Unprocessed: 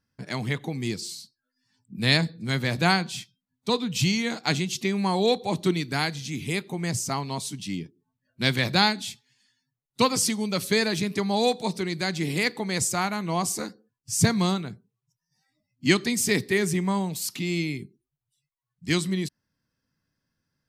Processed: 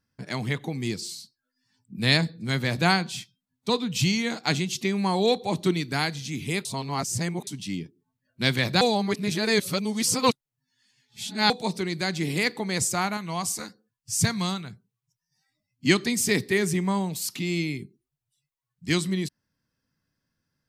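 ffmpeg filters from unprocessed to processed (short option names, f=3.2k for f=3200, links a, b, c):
-filter_complex "[0:a]asettb=1/sr,asplit=3[a][b][c];[a]atrim=end=13.174[d];[b]atrim=start=13.17:end=15.85,asetpts=PTS-STARTPTS,afade=t=in:d=0.004:c=qsin,afade=t=out:st=2.676:d=0.004:c=qsin,equalizer=f=370:w=0.63:g=-8.5[e];[c]atrim=start=15.846[f];[d][e]acrossfade=d=0.004:c1=hsin:c2=qsin[g];[g][f]acrossfade=d=0.004:c1=qsin:c2=hsin,asplit=5[h][i][j][k][l];[h]atrim=end=6.652[m];[i]atrim=start=6.648:end=7.472,asetpts=PTS-STARTPTS,areverse[n];[j]atrim=start=7.468:end=8.812[o];[k]atrim=start=8.808:end=11.502,asetpts=PTS-STARTPTS,areverse[p];[l]atrim=start=11.498[q];[m][n]acrossfade=d=0.004:c1=hsin:c2=hsin[r];[r][o]acrossfade=d=0.004:c1=hsin:c2=hsin[s];[s][p]acrossfade=d=0.004:c1=hsin:c2=hsin[t];[t][q]acrossfade=d=0.004:c1=hsin:c2=hsin"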